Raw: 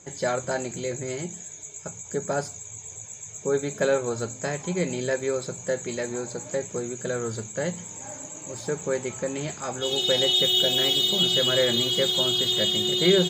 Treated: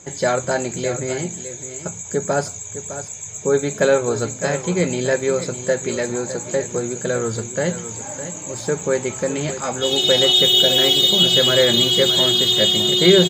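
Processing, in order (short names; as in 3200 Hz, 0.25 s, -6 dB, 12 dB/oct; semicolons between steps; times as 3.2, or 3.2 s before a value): echo 0.608 s -12 dB; gain +7 dB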